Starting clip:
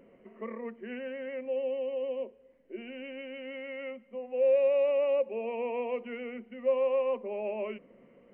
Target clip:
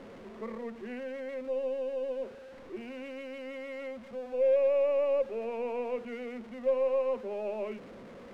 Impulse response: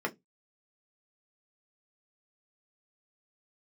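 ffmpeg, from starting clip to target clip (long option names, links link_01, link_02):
-af "aeval=exprs='val(0)+0.5*0.00944*sgn(val(0))':channel_layout=same,aeval=exprs='0.133*(cos(1*acos(clip(val(0)/0.133,-1,1)))-cos(1*PI/2))+0.00335*(cos(6*acos(clip(val(0)/0.133,-1,1)))-cos(6*PI/2))+0.00335*(cos(7*acos(clip(val(0)/0.133,-1,1)))-cos(7*PI/2))':channel_layout=same,aemphasis=mode=reproduction:type=75fm,volume=-2dB"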